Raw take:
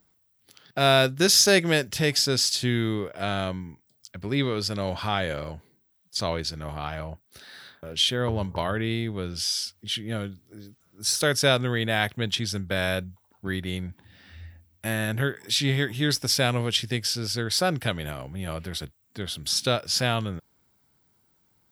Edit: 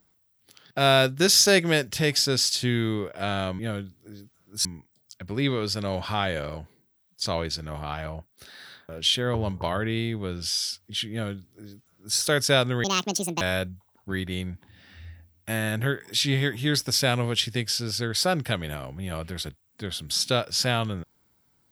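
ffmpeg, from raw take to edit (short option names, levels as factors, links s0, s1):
-filter_complex "[0:a]asplit=5[s0][s1][s2][s3][s4];[s0]atrim=end=3.592[s5];[s1]atrim=start=10.048:end=11.112[s6];[s2]atrim=start=3.588:end=11.784[s7];[s3]atrim=start=11.78:end=12.77,asetpts=PTS-STARTPTS,asetrate=76734,aresample=44100,atrim=end_sample=25091,asetpts=PTS-STARTPTS[s8];[s4]atrim=start=12.766[s9];[s5][s6]acrossfade=d=0.004:c1=hsin:c2=hsin[s10];[s10][s7]acrossfade=d=0.004:c1=hsin:c2=hsin[s11];[s11][s8]acrossfade=d=0.004:c1=hsin:c2=hsin[s12];[s12][s9]acrossfade=d=0.004:c1=hsin:c2=hsin"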